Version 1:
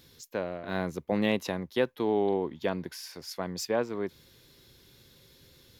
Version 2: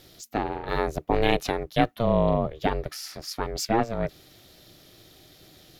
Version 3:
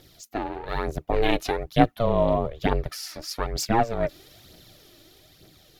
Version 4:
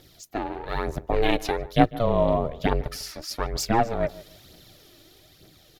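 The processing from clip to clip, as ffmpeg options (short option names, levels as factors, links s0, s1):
-af "aeval=exprs='val(0)*sin(2*PI*230*n/s)':c=same,volume=2.51"
-af "dynaudnorm=f=280:g=9:m=2,aphaser=in_gain=1:out_gain=1:delay=3.6:decay=0.48:speed=1.1:type=triangular,volume=0.668"
-filter_complex "[0:a]asplit=2[s0][s1];[s1]adelay=148,lowpass=f=1500:p=1,volume=0.133,asplit=2[s2][s3];[s3]adelay=148,lowpass=f=1500:p=1,volume=0.27[s4];[s0][s2][s4]amix=inputs=3:normalize=0"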